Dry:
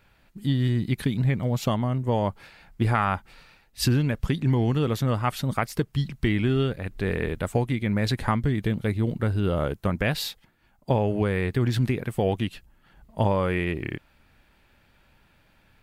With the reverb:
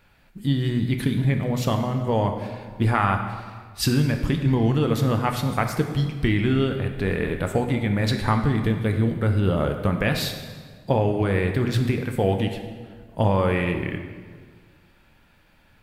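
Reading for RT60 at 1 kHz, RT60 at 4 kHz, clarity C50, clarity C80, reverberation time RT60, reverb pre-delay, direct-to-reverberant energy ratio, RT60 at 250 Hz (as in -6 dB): 1.6 s, 1.3 s, 7.0 dB, 8.5 dB, 1.6 s, 4 ms, 4.5 dB, 1.9 s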